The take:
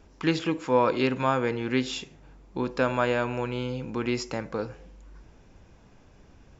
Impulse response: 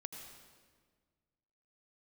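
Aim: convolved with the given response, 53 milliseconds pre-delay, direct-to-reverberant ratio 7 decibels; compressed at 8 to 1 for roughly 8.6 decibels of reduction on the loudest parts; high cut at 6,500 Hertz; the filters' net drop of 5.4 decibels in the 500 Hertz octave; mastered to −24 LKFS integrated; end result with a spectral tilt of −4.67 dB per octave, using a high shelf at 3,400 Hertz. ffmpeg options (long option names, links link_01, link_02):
-filter_complex "[0:a]lowpass=6500,equalizer=frequency=500:width_type=o:gain=-6.5,highshelf=frequency=3400:gain=-3.5,acompressor=threshold=-30dB:ratio=8,asplit=2[link_01][link_02];[1:a]atrim=start_sample=2205,adelay=53[link_03];[link_02][link_03]afir=irnorm=-1:irlink=0,volume=-4dB[link_04];[link_01][link_04]amix=inputs=2:normalize=0,volume=11.5dB"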